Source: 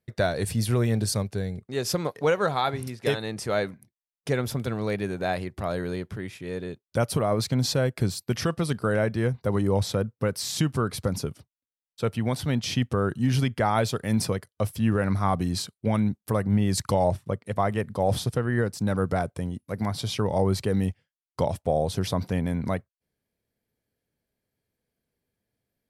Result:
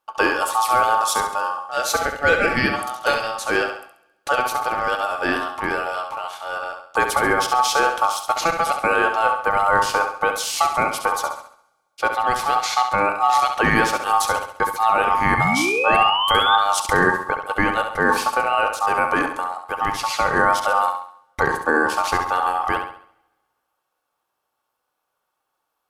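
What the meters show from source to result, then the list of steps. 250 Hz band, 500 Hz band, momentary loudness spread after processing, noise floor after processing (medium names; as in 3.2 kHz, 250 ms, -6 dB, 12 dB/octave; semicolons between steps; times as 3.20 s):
-2.0 dB, +3.0 dB, 8 LU, -77 dBFS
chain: painted sound rise, 15.37–16.56 s, 1.1–2.6 kHz -26 dBFS; ring modulator 1 kHz; de-hum 136.1 Hz, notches 37; on a send: flutter echo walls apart 11.6 m, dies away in 0.53 s; on the sum: two-slope reverb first 0.21 s, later 1.6 s, from -20 dB, DRR 17.5 dB; trim +8 dB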